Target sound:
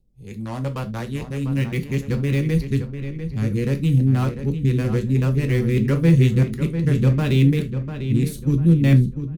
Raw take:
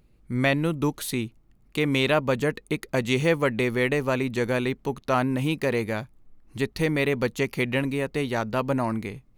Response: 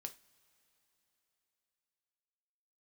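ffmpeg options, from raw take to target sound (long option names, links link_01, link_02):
-filter_complex "[0:a]areverse,asubboost=boost=11:cutoff=210,acrossover=split=350|690|3300[link_01][link_02][link_03][link_04];[link_03]acrusher=bits=4:mix=0:aa=0.5[link_05];[link_01][link_02][link_05][link_04]amix=inputs=4:normalize=0,asplit=2[link_06][link_07];[link_07]adelay=697,lowpass=frequency=3200:poles=1,volume=-9dB,asplit=2[link_08][link_09];[link_09]adelay=697,lowpass=frequency=3200:poles=1,volume=0.35,asplit=2[link_10][link_11];[link_11]adelay=697,lowpass=frequency=3200:poles=1,volume=0.35,asplit=2[link_12][link_13];[link_13]adelay=697,lowpass=frequency=3200:poles=1,volume=0.35[link_14];[link_06][link_08][link_10][link_12][link_14]amix=inputs=5:normalize=0[link_15];[1:a]atrim=start_sample=2205,atrim=end_sample=3969[link_16];[link_15][link_16]afir=irnorm=-1:irlink=0"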